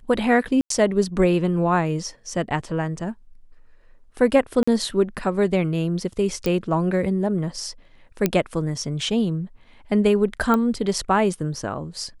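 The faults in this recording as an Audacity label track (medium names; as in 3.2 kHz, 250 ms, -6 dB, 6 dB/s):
0.610000	0.700000	dropout 93 ms
4.630000	4.670000	dropout 45 ms
6.460000	6.460000	pop -10 dBFS
8.260000	8.260000	pop -5 dBFS
10.540000	10.540000	pop -10 dBFS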